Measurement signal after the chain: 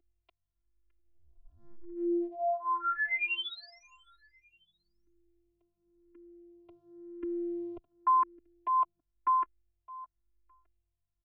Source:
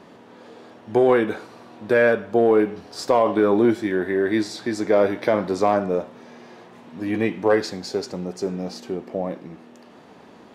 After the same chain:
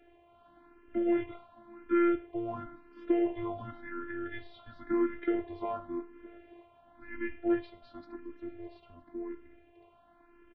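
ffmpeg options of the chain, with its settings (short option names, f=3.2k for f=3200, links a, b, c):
-filter_complex "[0:a]aeval=exprs='val(0)+0.00891*(sin(2*PI*50*n/s)+sin(2*PI*2*50*n/s)/2+sin(2*PI*3*50*n/s)/3+sin(2*PI*4*50*n/s)/4+sin(2*PI*5*50*n/s)/5)':c=same,highpass=f=280:t=q:w=0.5412,highpass=f=280:t=q:w=1.307,lowpass=f=3.2k:t=q:w=0.5176,lowpass=f=3.2k:t=q:w=0.7071,lowpass=f=3.2k:t=q:w=1.932,afreqshift=-180,asplit=2[a][b];[b]aecho=0:1:613|1226:0.0794|0.0262[c];[a][c]amix=inputs=2:normalize=0,afftfilt=real='hypot(re,im)*cos(PI*b)':imag='0':win_size=512:overlap=0.75,asplit=2[d][e];[e]afreqshift=0.94[f];[d][f]amix=inputs=2:normalize=1,volume=-6dB"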